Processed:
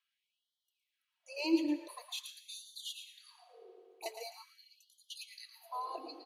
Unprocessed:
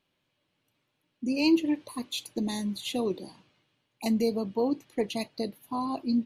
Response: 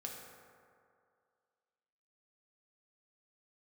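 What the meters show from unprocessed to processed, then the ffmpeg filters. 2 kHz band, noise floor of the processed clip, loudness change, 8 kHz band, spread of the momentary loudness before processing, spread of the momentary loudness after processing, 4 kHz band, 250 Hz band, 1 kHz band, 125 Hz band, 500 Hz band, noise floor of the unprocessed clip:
-8.0 dB, under -85 dBFS, -9.5 dB, -6.5 dB, 11 LU, 26 LU, -7.0 dB, -11.5 dB, -7.5 dB, under -35 dB, -13.5 dB, -78 dBFS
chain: -filter_complex "[0:a]aecho=1:1:3.1:0.44,asplit=2[s0][s1];[1:a]atrim=start_sample=2205,adelay=112[s2];[s1][s2]afir=irnorm=-1:irlink=0,volume=0.631[s3];[s0][s3]amix=inputs=2:normalize=0,afftfilt=real='re*gte(b*sr/1024,280*pow(3000/280,0.5+0.5*sin(2*PI*0.45*pts/sr)))':imag='im*gte(b*sr/1024,280*pow(3000/280,0.5+0.5*sin(2*PI*0.45*pts/sr)))':win_size=1024:overlap=0.75,volume=0.398"

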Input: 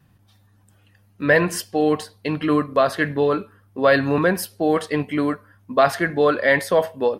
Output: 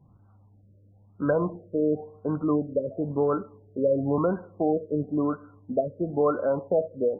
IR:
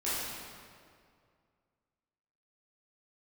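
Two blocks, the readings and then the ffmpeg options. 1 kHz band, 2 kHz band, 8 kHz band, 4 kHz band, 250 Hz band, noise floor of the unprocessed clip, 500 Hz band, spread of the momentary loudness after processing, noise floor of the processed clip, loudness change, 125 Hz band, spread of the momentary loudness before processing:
-10.5 dB, -22.0 dB, under -40 dB, under -40 dB, -4.5 dB, -57 dBFS, -5.5 dB, 6 LU, -57 dBFS, -7.0 dB, -4.5 dB, 8 LU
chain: -filter_complex "[0:a]acompressor=threshold=0.0355:ratio=1.5,asplit=2[s0][s1];[1:a]atrim=start_sample=2205,asetrate=83790,aresample=44100[s2];[s1][s2]afir=irnorm=-1:irlink=0,volume=0.0631[s3];[s0][s3]amix=inputs=2:normalize=0,afftfilt=real='re*lt(b*sr/1024,610*pow(1600/610,0.5+0.5*sin(2*PI*0.97*pts/sr)))':imag='im*lt(b*sr/1024,610*pow(1600/610,0.5+0.5*sin(2*PI*0.97*pts/sr)))':win_size=1024:overlap=0.75"

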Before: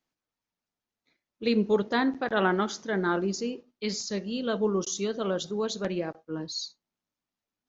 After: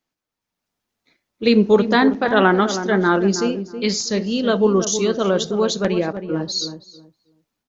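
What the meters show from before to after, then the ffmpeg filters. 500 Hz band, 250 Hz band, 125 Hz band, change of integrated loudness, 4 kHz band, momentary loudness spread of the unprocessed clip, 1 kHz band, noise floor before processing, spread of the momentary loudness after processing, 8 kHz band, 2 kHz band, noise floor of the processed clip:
+10.5 dB, +10.5 dB, +11.0 dB, +10.5 dB, +10.5 dB, 10 LU, +10.5 dB, under -85 dBFS, 8 LU, no reading, +10.0 dB, -83 dBFS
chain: -filter_complex "[0:a]dynaudnorm=f=380:g=3:m=2.37,asplit=2[s0][s1];[s1]adelay=321,lowpass=f=1100:p=1,volume=0.355,asplit=2[s2][s3];[s3]adelay=321,lowpass=f=1100:p=1,volume=0.21,asplit=2[s4][s5];[s5]adelay=321,lowpass=f=1100:p=1,volume=0.21[s6];[s2][s4][s6]amix=inputs=3:normalize=0[s7];[s0][s7]amix=inputs=2:normalize=0,volume=1.41"

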